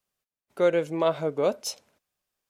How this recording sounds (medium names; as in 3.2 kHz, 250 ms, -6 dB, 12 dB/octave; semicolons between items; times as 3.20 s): noise floor -94 dBFS; spectral tilt -4.5 dB/octave